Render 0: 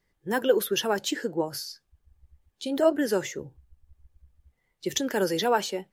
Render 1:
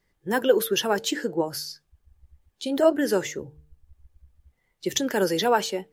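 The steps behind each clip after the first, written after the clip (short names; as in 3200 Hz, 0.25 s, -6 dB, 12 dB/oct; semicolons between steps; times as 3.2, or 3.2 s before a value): de-hum 150.4 Hz, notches 3; gain +2.5 dB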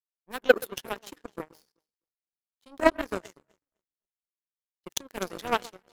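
echo with dull and thin repeats by turns 0.127 s, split 1300 Hz, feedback 70%, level -8 dB; power-law curve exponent 3; gain +5.5 dB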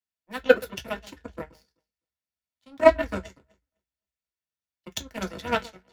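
reverb RT60 0.10 s, pre-delay 3 ms, DRR 3 dB; gain -6.5 dB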